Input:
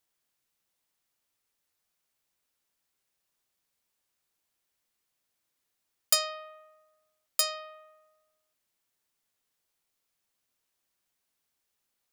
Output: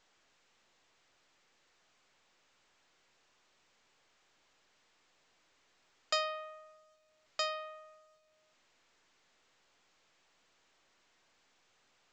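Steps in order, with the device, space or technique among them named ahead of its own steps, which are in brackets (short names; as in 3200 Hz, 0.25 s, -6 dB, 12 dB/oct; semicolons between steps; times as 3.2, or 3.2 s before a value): telephone (BPF 280–3100 Hz; A-law 128 kbps 16000 Hz)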